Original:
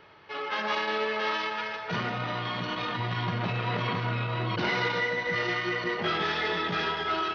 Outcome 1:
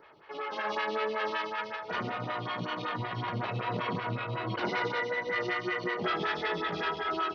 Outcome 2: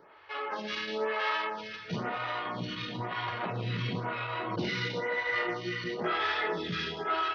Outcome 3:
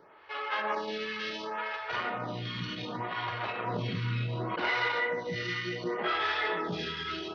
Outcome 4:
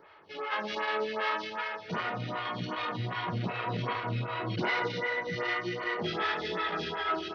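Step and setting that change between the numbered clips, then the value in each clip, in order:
photocell phaser, rate: 5.3, 1, 0.68, 2.6 Hz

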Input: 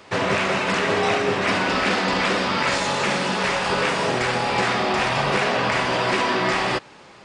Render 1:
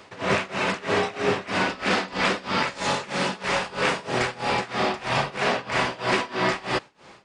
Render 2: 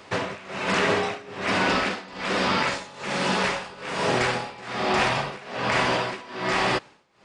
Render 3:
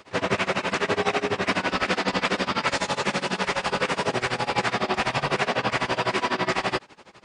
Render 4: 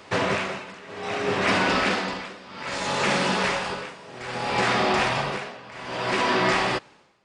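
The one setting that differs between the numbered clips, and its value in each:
tremolo, rate: 3.1, 1.2, 12, 0.62 Hz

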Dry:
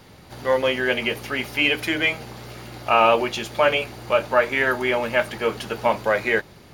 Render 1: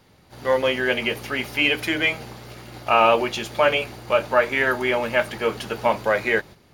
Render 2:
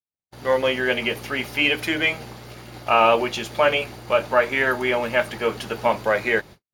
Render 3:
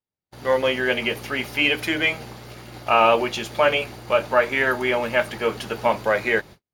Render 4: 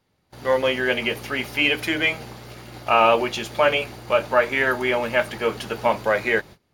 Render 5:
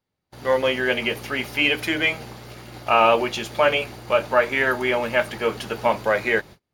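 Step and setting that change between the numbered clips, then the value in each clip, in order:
gate, range: -8, -60, -47, -22, -34 dB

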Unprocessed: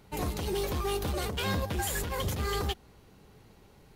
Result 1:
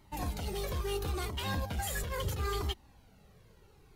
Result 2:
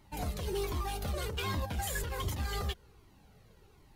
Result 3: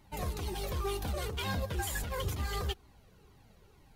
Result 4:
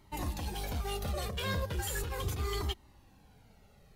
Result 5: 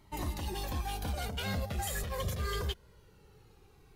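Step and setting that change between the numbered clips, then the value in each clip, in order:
cascading flanger, rate: 0.74, 1.3, 2.1, 0.37, 0.22 Hz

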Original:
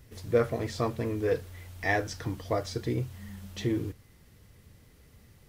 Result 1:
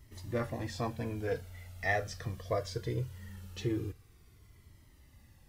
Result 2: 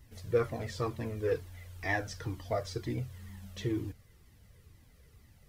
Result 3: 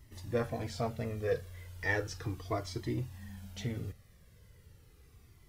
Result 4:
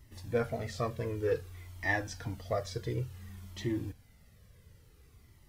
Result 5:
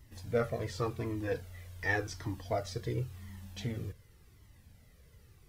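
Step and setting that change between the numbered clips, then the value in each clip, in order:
cascading flanger, rate: 0.21, 2.1, 0.36, 0.56, 0.9 Hz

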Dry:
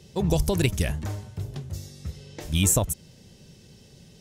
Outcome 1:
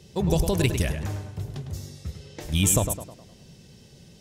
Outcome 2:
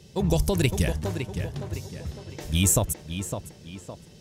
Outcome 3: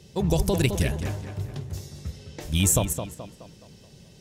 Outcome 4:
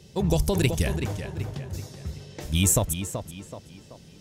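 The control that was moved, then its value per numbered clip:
tape echo, time: 0.103, 0.56, 0.213, 0.38 s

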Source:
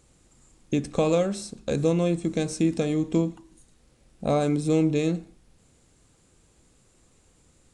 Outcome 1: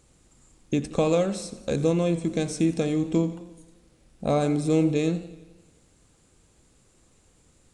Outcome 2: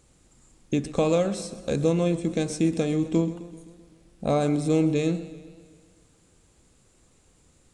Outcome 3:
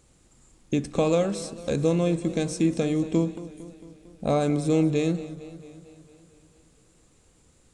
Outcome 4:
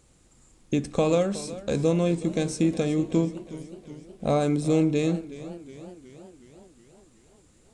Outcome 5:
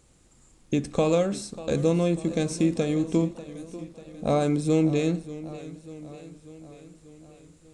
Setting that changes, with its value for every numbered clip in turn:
warbling echo, time: 87, 129, 226, 369, 591 ms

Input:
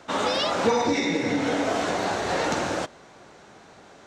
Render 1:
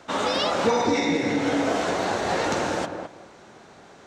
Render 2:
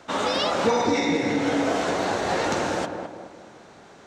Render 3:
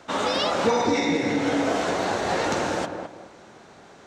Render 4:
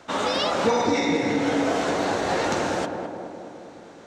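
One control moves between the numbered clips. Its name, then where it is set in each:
tape echo, feedback: 20, 52, 33, 79%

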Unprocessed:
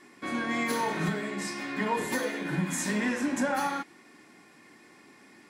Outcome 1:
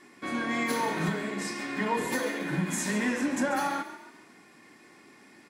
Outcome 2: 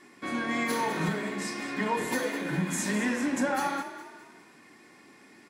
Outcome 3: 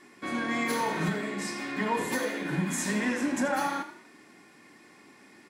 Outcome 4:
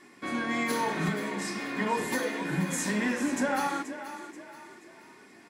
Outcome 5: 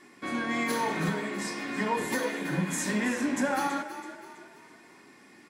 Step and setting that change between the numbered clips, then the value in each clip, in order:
frequency-shifting echo, time: 139, 206, 81, 481, 328 ms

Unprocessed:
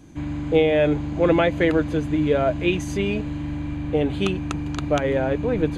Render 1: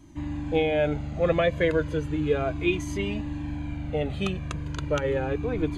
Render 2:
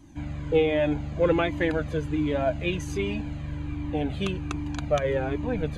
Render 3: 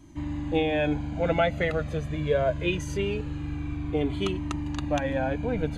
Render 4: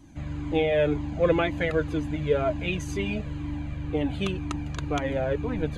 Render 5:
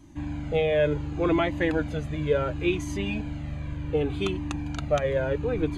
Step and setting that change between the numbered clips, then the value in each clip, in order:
cascading flanger, rate: 0.34, 1.3, 0.23, 2, 0.69 Hz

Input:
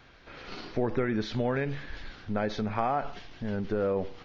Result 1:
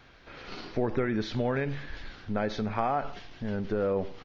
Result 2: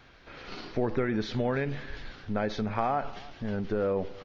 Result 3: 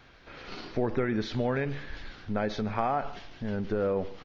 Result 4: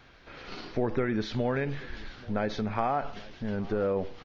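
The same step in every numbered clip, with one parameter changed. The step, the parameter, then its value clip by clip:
feedback echo, time: 92, 307, 147, 833 ms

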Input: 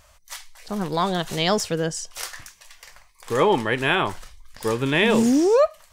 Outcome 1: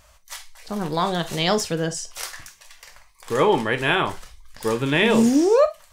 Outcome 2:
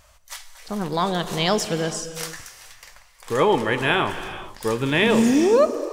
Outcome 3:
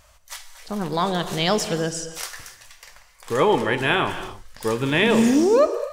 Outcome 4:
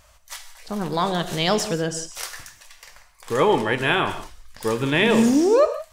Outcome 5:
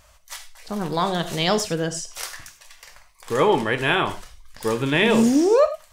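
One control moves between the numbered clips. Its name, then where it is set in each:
non-linear reverb, gate: 80, 490, 320, 200, 120 ms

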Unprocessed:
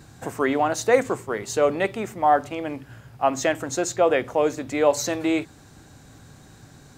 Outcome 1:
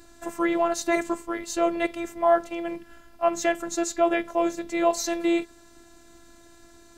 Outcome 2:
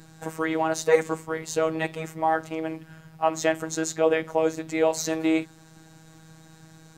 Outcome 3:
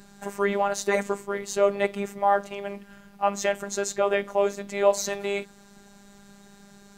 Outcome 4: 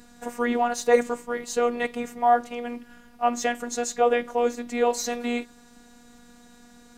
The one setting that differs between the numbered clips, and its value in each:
robotiser, frequency: 340, 160, 200, 240 Hz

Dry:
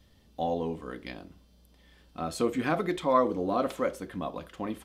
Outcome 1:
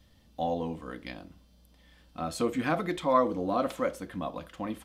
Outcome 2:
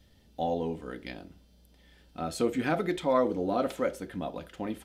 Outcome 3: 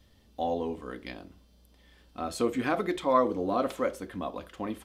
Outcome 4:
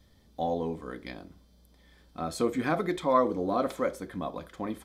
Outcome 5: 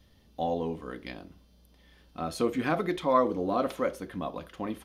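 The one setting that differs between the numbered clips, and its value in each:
notch, frequency: 400, 1100, 160, 2800, 7700 Hz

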